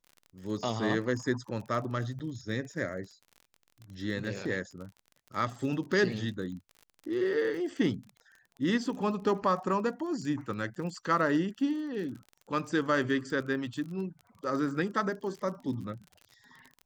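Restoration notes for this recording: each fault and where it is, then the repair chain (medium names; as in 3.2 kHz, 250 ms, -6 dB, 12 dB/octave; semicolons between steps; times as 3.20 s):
crackle 35 per s -40 dBFS
2.19–2.20 s: dropout 8.8 ms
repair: de-click; interpolate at 2.19 s, 8.8 ms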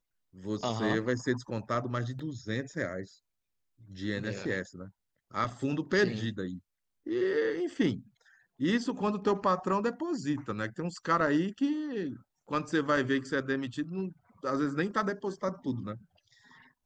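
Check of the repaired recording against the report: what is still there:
nothing left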